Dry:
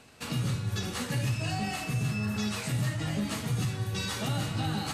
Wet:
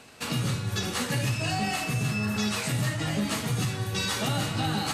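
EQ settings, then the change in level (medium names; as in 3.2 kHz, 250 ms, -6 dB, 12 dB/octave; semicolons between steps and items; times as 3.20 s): bass shelf 160 Hz -7 dB; +5.5 dB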